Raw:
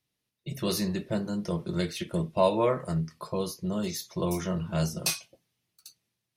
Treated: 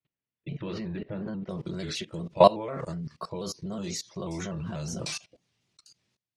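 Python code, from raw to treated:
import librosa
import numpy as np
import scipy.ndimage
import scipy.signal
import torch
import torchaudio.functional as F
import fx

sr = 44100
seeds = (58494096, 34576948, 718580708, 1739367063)

y = fx.lowpass(x, sr, hz=fx.steps((0.0, 3000.0), (1.49, 7800.0)), slope=24)
y = fx.level_steps(y, sr, step_db=21)
y = fx.vibrato_shape(y, sr, shape='square', rate_hz=4.1, depth_cents=100.0)
y = F.gain(torch.from_numpy(y), 8.0).numpy()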